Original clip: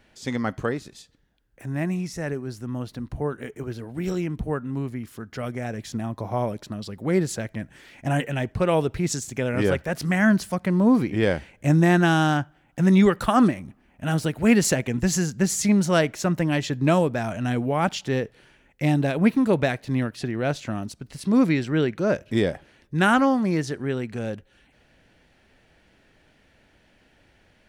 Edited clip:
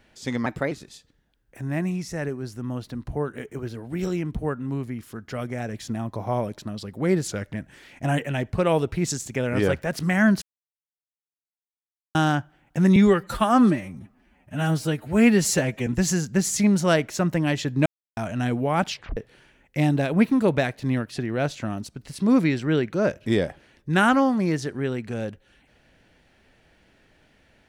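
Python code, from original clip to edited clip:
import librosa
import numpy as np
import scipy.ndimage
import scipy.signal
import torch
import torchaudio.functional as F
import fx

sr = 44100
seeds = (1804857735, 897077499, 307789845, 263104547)

y = fx.edit(x, sr, fx.speed_span(start_s=0.46, length_s=0.3, speed=1.18),
    fx.speed_span(start_s=7.32, length_s=0.25, speed=0.91),
    fx.silence(start_s=10.44, length_s=1.73),
    fx.stretch_span(start_s=12.98, length_s=1.94, factor=1.5),
    fx.silence(start_s=16.91, length_s=0.31),
    fx.tape_stop(start_s=17.95, length_s=0.27), tone=tone)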